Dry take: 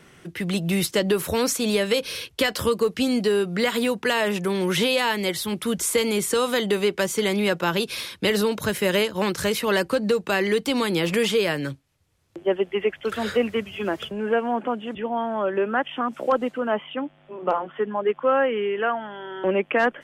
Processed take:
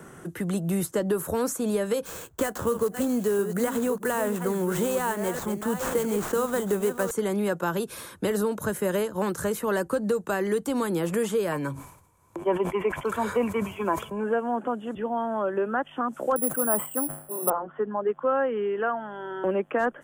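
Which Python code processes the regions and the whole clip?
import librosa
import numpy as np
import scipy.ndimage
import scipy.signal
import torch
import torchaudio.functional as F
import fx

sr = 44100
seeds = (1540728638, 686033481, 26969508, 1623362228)

y = fx.chain(x, sr, fx.reverse_delay(ms=668, wet_db=-9),
    fx.sample_hold(seeds[0], rate_hz=11000.0, jitter_pct=20), at=(2.05, 7.11))
y = fx.chain(y, sr, fx.small_body(hz=(1000.0, 2300.0), ring_ms=30, db=17),
    fx.sustainer(db_per_s=94.0), at=(11.52, 14.24))
y = fx.chain(y, sr, fx.resample_bad(factor=4, down='none', up='zero_stuff'),
    fx.sustainer(db_per_s=120.0), at=(16.36, 17.5))
y = fx.band_shelf(y, sr, hz=3300.0, db=-13.5, octaves=1.7)
y = fx.band_squash(y, sr, depth_pct=40)
y = F.gain(torch.from_numpy(y), -3.5).numpy()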